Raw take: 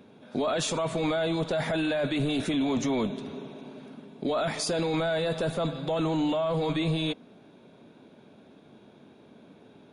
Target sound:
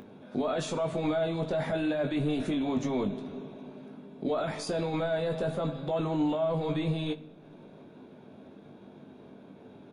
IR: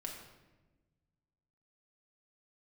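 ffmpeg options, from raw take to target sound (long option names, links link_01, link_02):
-filter_complex "[0:a]highshelf=frequency=2000:gain=-8.5,acompressor=mode=upward:threshold=-41dB:ratio=2.5,asplit=2[link_01][link_02];[link_02]adelay=20,volume=-7dB[link_03];[link_01][link_03]amix=inputs=2:normalize=0,asplit=2[link_04][link_05];[1:a]atrim=start_sample=2205,adelay=11[link_06];[link_05][link_06]afir=irnorm=-1:irlink=0,volume=-12dB[link_07];[link_04][link_07]amix=inputs=2:normalize=0,volume=-2.5dB"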